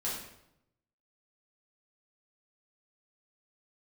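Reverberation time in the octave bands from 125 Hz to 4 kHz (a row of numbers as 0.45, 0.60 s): 1.1, 0.95, 0.85, 0.75, 0.70, 0.60 s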